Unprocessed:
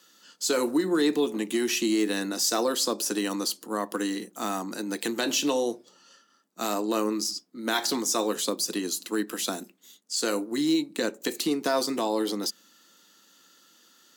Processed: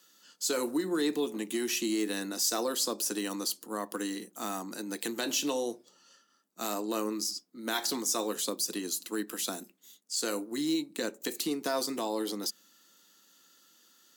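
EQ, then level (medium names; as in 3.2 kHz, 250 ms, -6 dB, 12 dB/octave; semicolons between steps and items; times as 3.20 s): treble shelf 7.6 kHz +7 dB; -6.0 dB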